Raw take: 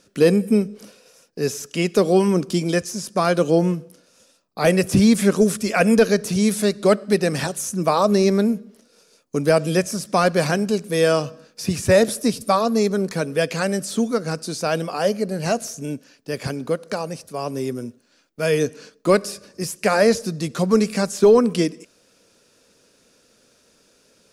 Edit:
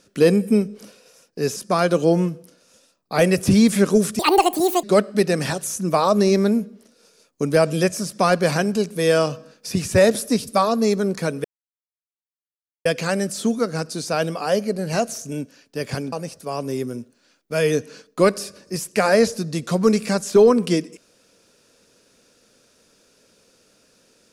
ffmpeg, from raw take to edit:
ffmpeg -i in.wav -filter_complex "[0:a]asplit=6[link_01][link_02][link_03][link_04][link_05][link_06];[link_01]atrim=end=1.562[link_07];[link_02]atrim=start=3.018:end=5.654[link_08];[link_03]atrim=start=5.65:end=6.77,asetpts=PTS-STARTPTS,asetrate=76734,aresample=44100,atrim=end_sample=28386,asetpts=PTS-STARTPTS[link_09];[link_04]atrim=start=6.766:end=13.38,asetpts=PTS-STARTPTS,afade=type=out:start_time=6.61:duration=0.004:curve=hsin,apad=pad_dur=1.41[link_10];[link_05]atrim=start=13.38:end=16.652,asetpts=PTS-STARTPTS,afade=type=in:duration=0.004:curve=hsin[link_11];[link_06]atrim=start=16.998[link_12];[link_07][link_08]acrossfade=duration=0.004:curve1=hsin:curve2=hsin[link_13];[link_13][link_09]acrossfade=duration=0.004:curve1=hsin:curve2=hsin[link_14];[link_10][link_11]concat=n=2:v=0:a=1[link_15];[link_14][link_15]acrossfade=duration=0.004:curve1=hsin:curve2=hsin[link_16];[link_16][link_12]acrossfade=duration=0.004:curve1=hsin:curve2=hsin" out.wav

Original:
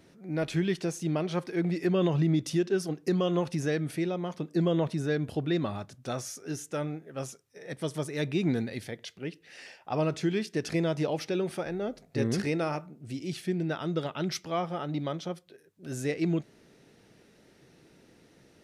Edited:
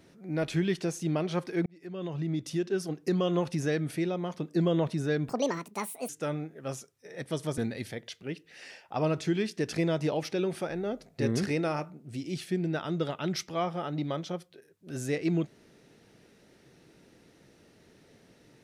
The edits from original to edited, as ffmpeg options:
ffmpeg -i in.wav -filter_complex "[0:a]asplit=5[link_01][link_02][link_03][link_04][link_05];[link_01]atrim=end=1.66,asetpts=PTS-STARTPTS,afade=type=out:start_time=1.656:duration=0.004:curve=hsin[link_06];[link_02]atrim=start=1.66:end=5.294,asetpts=PTS-STARTPTS,afade=type=in:duration=1.97:curve=qsin[link_07];[link_03]atrim=start=5.29:end=6.6,asetpts=PTS-STARTPTS,asetrate=72324,aresample=44100,atrim=end_sample=35226,asetpts=PTS-STARTPTS[link_08];[link_04]atrim=start=6.596:end=8.092[link_09];[link_05]atrim=start=8.538[link_10];[link_06][link_07]concat=n=2:v=0:a=1[link_11];[link_11][link_08]acrossfade=duration=0.004:curve1=hsin:curve2=hsin[link_12];[link_12][link_09]acrossfade=duration=0.004:curve1=hsin:curve2=hsin[link_13];[link_13][link_10]acrossfade=duration=0.004:curve1=hsin:curve2=hsin" out.wav

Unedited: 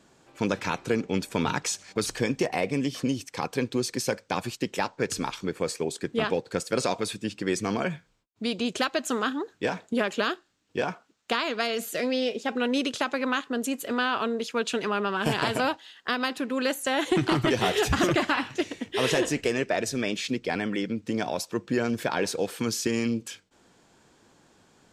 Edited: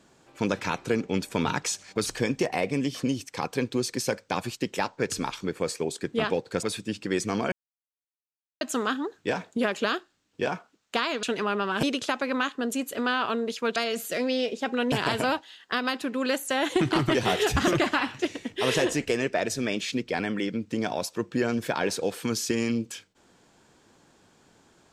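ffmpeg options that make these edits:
ffmpeg -i in.wav -filter_complex "[0:a]asplit=8[link_01][link_02][link_03][link_04][link_05][link_06][link_07][link_08];[link_01]atrim=end=6.632[link_09];[link_02]atrim=start=6.988:end=7.88,asetpts=PTS-STARTPTS,afade=type=out:start_time=0.888:duration=0.004:curve=hsin[link_10];[link_03]atrim=start=7.88:end=8.97,asetpts=PTS-STARTPTS,volume=0[link_11];[link_04]atrim=start=8.97:end=11.592,asetpts=PTS-STARTPTS,afade=type=in:duration=0.004:curve=hsin[link_12];[link_05]atrim=start=14.678:end=15.282[link_13];[link_06]atrim=start=12.748:end=14.682[link_14];[link_07]atrim=start=11.588:end=12.752[link_15];[link_08]atrim=start=15.278[link_16];[link_10][link_11][link_12]concat=n=3:v=0:a=1[link_17];[link_09][link_17]acrossfade=duration=0.004:curve1=hsin:curve2=hsin[link_18];[link_18][link_13]acrossfade=duration=0.004:curve1=hsin:curve2=hsin[link_19];[link_19][link_14]acrossfade=duration=0.004:curve1=hsin:curve2=hsin[link_20];[link_20][link_15]acrossfade=duration=0.004:curve1=hsin:curve2=hsin[link_21];[link_21][link_16]acrossfade=duration=0.004:curve1=hsin:curve2=hsin" out.wav

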